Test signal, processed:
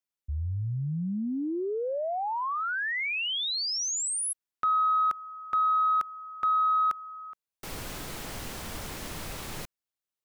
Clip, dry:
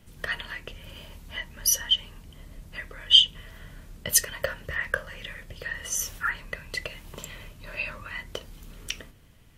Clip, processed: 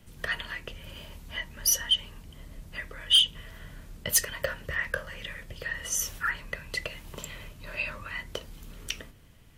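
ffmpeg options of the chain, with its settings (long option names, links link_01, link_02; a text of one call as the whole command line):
ffmpeg -i in.wav -filter_complex "[0:a]acrossover=split=750|1600[link_01][link_02][link_03];[link_02]alimiter=level_in=2dB:limit=-24dB:level=0:latency=1,volume=-2dB[link_04];[link_01][link_04][link_03]amix=inputs=3:normalize=0,asoftclip=type=tanh:threshold=-13.5dB" out.wav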